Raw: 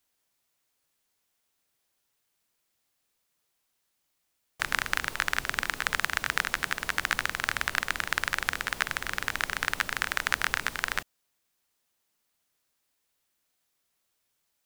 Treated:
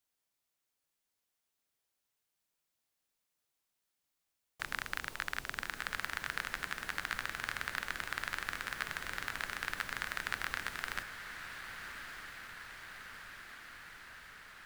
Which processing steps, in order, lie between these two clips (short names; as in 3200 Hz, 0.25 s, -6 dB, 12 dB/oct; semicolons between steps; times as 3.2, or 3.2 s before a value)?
soft clip -8.5 dBFS, distortion -17 dB; on a send: diffused feedback echo 1.248 s, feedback 70%, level -8.5 dB; on the sum: gain -8.5 dB